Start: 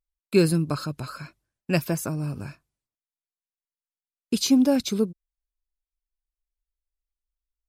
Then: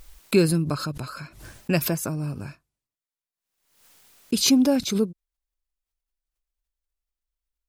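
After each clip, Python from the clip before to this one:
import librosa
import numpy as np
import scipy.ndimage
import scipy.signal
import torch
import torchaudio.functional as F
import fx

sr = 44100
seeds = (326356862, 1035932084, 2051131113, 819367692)

y = fx.pre_swell(x, sr, db_per_s=76.0)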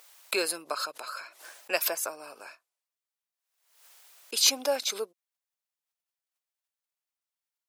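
y = scipy.signal.sosfilt(scipy.signal.butter(4, 540.0, 'highpass', fs=sr, output='sos'), x)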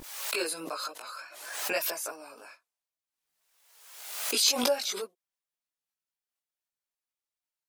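y = fx.vibrato(x, sr, rate_hz=3.4, depth_cents=51.0)
y = fx.chorus_voices(y, sr, voices=6, hz=0.39, base_ms=20, depth_ms=3.7, mix_pct=55)
y = fx.pre_swell(y, sr, db_per_s=52.0)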